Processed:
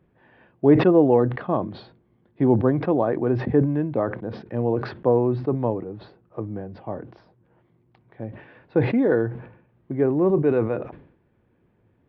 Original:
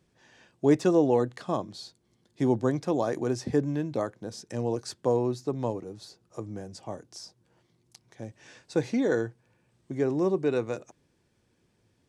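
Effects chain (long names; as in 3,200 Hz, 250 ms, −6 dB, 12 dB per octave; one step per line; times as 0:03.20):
Gaussian smoothing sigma 3.9 samples
floating-point word with a short mantissa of 8 bits
level that may fall only so fast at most 91 dB per second
level +6 dB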